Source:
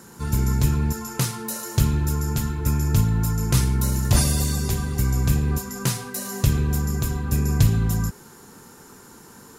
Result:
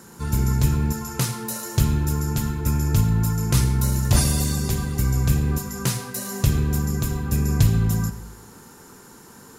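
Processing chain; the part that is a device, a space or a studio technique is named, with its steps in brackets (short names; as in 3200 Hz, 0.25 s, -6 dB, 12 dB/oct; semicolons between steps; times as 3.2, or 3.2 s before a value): saturated reverb return (on a send at -11.5 dB: reverb RT60 0.85 s, pre-delay 66 ms + soft clip -11.5 dBFS, distortion -19 dB)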